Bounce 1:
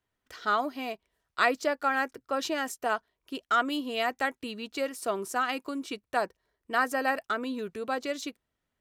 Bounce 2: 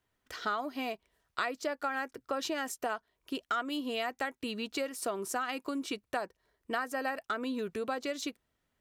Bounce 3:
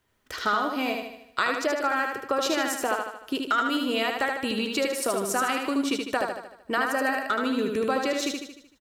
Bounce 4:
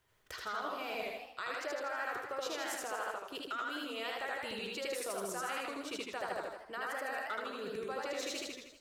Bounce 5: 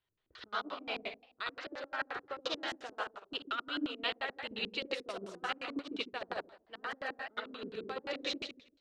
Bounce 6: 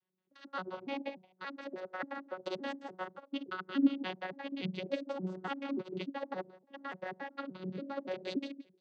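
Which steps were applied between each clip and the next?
downward compressor 4 to 1, threshold −35 dBFS, peak gain reduction 14 dB; level +3 dB
notch filter 710 Hz, Q 17; on a send: repeating echo 76 ms, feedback 51%, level −4 dB; on the sum: level +7.5 dB
reversed playback; downward compressor 10 to 1, threshold −34 dBFS, peak gain reduction 15 dB; reversed playback; parametric band 250 Hz −13 dB 0.44 octaves; feedback echo with a swinging delay time 81 ms, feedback 47%, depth 159 cents, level −4 dB; level −2.5 dB
auto-filter low-pass square 5.7 Hz 290–3,700 Hz; expander for the loud parts 2.5 to 1, over −47 dBFS; level +4.5 dB
vocoder with an arpeggio as carrier bare fifth, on F#3, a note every 288 ms; low-shelf EQ 370 Hz +3.5 dB; level +1 dB

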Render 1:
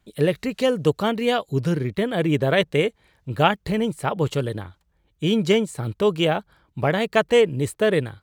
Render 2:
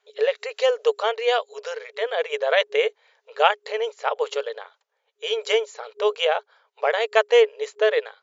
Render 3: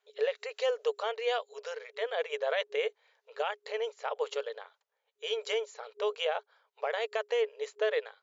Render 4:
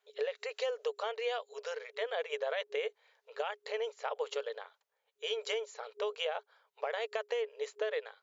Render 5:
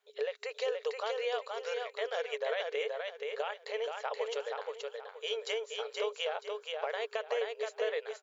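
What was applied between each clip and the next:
brick-wall band-pass 410–7,300 Hz; level +1 dB
brickwall limiter −12.5 dBFS, peak gain reduction 11 dB; level −8 dB
downward compressor, threshold −31 dBFS, peak gain reduction 7 dB
repeating echo 476 ms, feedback 29%, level −4 dB

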